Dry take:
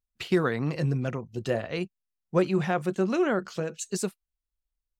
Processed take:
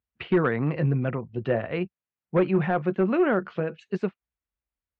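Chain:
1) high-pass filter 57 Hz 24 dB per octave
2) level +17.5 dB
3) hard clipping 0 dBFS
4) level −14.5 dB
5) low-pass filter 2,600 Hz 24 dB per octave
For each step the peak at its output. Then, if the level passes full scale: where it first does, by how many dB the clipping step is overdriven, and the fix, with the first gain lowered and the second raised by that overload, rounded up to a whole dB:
−10.5, +7.0, 0.0, −14.5, −13.5 dBFS
step 2, 7.0 dB
step 2 +10.5 dB, step 4 −7.5 dB

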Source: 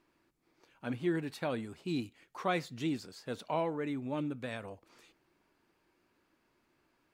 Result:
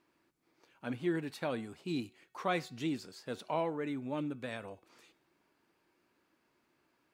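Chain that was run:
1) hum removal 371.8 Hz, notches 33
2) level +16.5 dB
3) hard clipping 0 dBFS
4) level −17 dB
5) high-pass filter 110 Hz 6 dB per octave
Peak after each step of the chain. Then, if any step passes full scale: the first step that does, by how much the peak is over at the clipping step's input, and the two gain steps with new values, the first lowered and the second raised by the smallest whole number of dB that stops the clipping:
−19.0, −2.5, −2.5, −19.5, −19.0 dBFS
no step passes full scale

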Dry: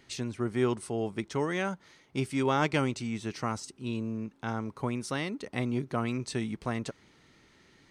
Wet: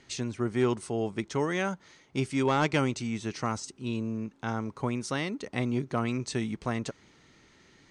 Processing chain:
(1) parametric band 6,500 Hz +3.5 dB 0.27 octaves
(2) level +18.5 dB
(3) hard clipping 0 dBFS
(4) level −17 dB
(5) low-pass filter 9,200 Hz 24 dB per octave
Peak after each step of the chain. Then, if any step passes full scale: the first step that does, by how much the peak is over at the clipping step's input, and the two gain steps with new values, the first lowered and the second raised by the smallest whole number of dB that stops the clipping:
−13.5, +5.0, 0.0, −17.0, −16.0 dBFS
step 2, 5.0 dB
step 2 +13.5 dB, step 4 −12 dB

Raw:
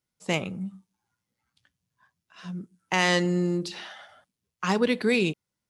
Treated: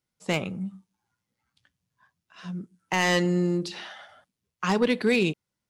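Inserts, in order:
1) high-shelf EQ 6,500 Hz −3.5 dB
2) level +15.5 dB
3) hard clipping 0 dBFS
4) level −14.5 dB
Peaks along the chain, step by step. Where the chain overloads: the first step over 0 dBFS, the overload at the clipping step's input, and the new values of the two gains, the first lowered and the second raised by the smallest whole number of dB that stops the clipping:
−8.5, +7.0, 0.0, −14.5 dBFS
step 2, 7.0 dB
step 2 +8.5 dB, step 4 −7.5 dB

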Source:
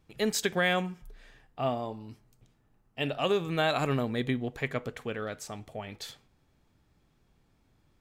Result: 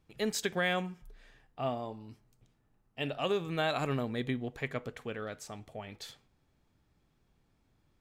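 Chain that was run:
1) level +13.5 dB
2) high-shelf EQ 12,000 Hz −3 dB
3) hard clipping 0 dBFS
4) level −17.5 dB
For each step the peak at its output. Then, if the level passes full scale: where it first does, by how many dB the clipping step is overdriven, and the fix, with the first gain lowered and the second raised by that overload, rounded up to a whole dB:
−1.5, −1.5, −1.5, −19.0 dBFS
no step passes full scale

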